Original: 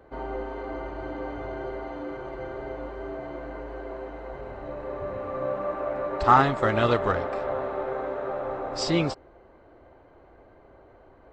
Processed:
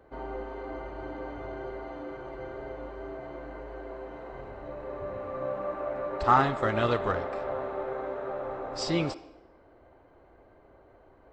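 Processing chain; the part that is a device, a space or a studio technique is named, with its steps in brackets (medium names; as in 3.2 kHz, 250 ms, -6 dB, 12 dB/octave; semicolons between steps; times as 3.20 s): filtered reverb send (on a send: high-pass 230 Hz 24 dB/octave + low-pass 5.5 kHz + reverberation RT60 0.85 s, pre-delay 47 ms, DRR 15.5 dB); 4.06–4.49 s: on the sum: doubling 47 ms -5 dB; trim -4 dB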